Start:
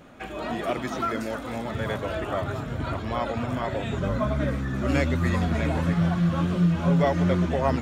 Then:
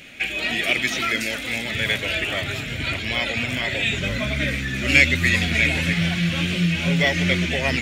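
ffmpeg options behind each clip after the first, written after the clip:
-af "highshelf=f=1600:t=q:w=3:g=13"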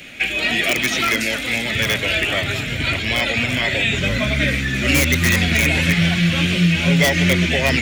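-filter_complex "[0:a]acrossover=split=130|750|2100[s0][s1][s2][s3];[s2]aeval=exprs='(mod(10*val(0)+1,2)-1)/10':c=same[s4];[s3]alimiter=limit=0.133:level=0:latency=1:release=103[s5];[s0][s1][s4][s5]amix=inputs=4:normalize=0,volume=1.78"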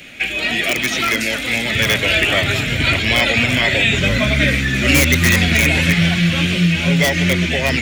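-af "dynaudnorm=f=270:g=13:m=3.76"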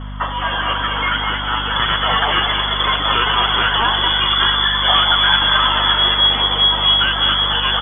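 -af "aecho=1:1:209:0.473,lowpass=f=3000:t=q:w=0.5098,lowpass=f=3000:t=q:w=0.6013,lowpass=f=3000:t=q:w=0.9,lowpass=f=3000:t=q:w=2.563,afreqshift=-3500,aeval=exprs='val(0)+0.0501*(sin(2*PI*50*n/s)+sin(2*PI*2*50*n/s)/2+sin(2*PI*3*50*n/s)/3+sin(2*PI*4*50*n/s)/4+sin(2*PI*5*50*n/s)/5)':c=same,volume=0.891"

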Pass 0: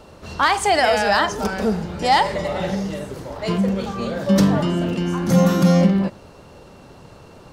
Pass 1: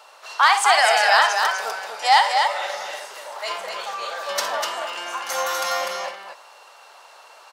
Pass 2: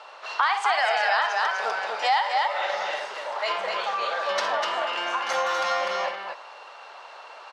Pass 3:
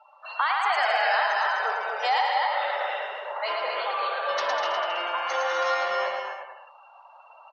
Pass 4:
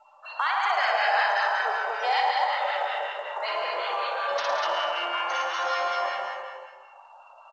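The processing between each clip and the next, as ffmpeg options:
-af "highpass=f=750:w=0.5412,highpass=f=750:w=1.3066,aecho=1:1:61.22|247.8:0.282|0.562,volume=1.33"
-af "lowpass=3700,acompressor=threshold=0.0447:ratio=3,volume=1.58"
-filter_complex "[0:a]afftdn=nr=28:nf=-36,asplit=2[s0][s1];[s1]aecho=0:1:110|198|268.4|324.7|369.8:0.631|0.398|0.251|0.158|0.1[s2];[s0][s2]amix=inputs=2:normalize=0,volume=0.75"
-filter_complex "[0:a]aecho=1:1:60|138|239.4|371.2|542.6:0.631|0.398|0.251|0.158|0.1,acrossover=split=1100[s0][s1];[s0]aeval=exprs='val(0)*(1-0.5/2+0.5/2*cos(2*PI*5.3*n/s))':c=same[s2];[s1]aeval=exprs='val(0)*(1-0.5/2-0.5/2*cos(2*PI*5.3*n/s))':c=same[s3];[s2][s3]amix=inputs=2:normalize=0" -ar 16000 -c:a pcm_mulaw

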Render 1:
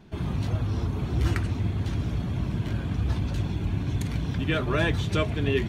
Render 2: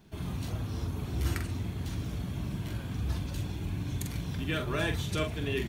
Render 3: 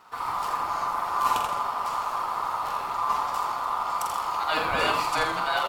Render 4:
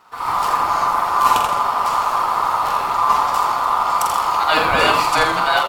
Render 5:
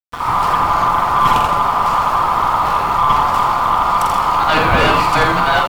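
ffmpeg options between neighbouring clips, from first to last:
-filter_complex "[0:a]aemphasis=mode=production:type=50fm,asplit=2[s0][s1];[s1]adelay=45,volume=0.473[s2];[s0][s2]amix=inputs=2:normalize=0,volume=0.447"
-filter_complex "[0:a]equalizer=f=1800:t=o:w=0.21:g=3.5,aeval=exprs='val(0)*sin(2*PI*1100*n/s)':c=same,asplit=2[s0][s1];[s1]asplit=5[s2][s3][s4][s5][s6];[s2]adelay=83,afreqshift=-150,volume=0.501[s7];[s3]adelay=166,afreqshift=-300,volume=0.207[s8];[s4]adelay=249,afreqshift=-450,volume=0.0841[s9];[s5]adelay=332,afreqshift=-600,volume=0.0347[s10];[s6]adelay=415,afreqshift=-750,volume=0.0141[s11];[s7][s8][s9][s10][s11]amix=inputs=5:normalize=0[s12];[s0][s12]amix=inputs=2:normalize=0,volume=2.37"
-af "dynaudnorm=f=160:g=3:m=2.66,volume=1.26"
-af "aeval=exprs='val(0)*gte(abs(val(0)),0.0335)':c=same,aeval=exprs='0.891*(cos(1*acos(clip(val(0)/0.891,-1,1)))-cos(1*PI/2))+0.178*(cos(2*acos(clip(val(0)/0.891,-1,1)))-cos(2*PI/2))+0.178*(cos(5*acos(clip(val(0)/0.891,-1,1)))-cos(5*PI/2))':c=same,bass=f=250:g=9,treble=f=4000:g=-8,volume=0.841"

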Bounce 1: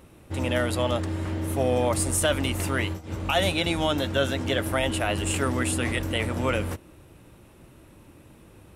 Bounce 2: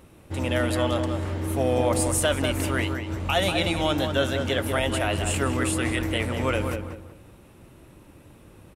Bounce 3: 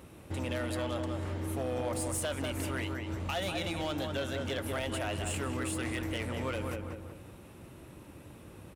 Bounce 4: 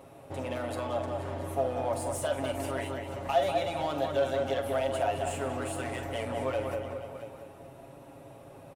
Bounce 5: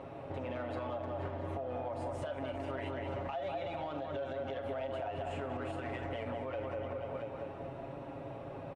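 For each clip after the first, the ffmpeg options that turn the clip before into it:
-filter_complex "[0:a]asplit=2[s0][s1];[s1]adelay=191,lowpass=f=2100:p=1,volume=0.531,asplit=2[s2][s3];[s3]adelay=191,lowpass=f=2100:p=1,volume=0.31,asplit=2[s4][s5];[s5]adelay=191,lowpass=f=2100:p=1,volume=0.31,asplit=2[s6][s7];[s7]adelay=191,lowpass=f=2100:p=1,volume=0.31[s8];[s0][s2][s4][s6][s8]amix=inputs=5:normalize=0"
-af "highpass=52,acompressor=threshold=0.0126:ratio=2,volume=25.1,asoftclip=hard,volume=0.0398"
-filter_complex "[0:a]equalizer=f=680:w=1.3:g=14.5,aecho=1:1:7.3:0.65,asplit=2[s0][s1];[s1]aecho=0:1:45|478|678:0.299|0.2|0.178[s2];[s0][s2]amix=inputs=2:normalize=0,volume=0.531"
-af "lowpass=2900,acompressor=threshold=0.0224:ratio=4,alimiter=level_in=3.76:limit=0.0631:level=0:latency=1:release=195,volume=0.266,volume=1.78"

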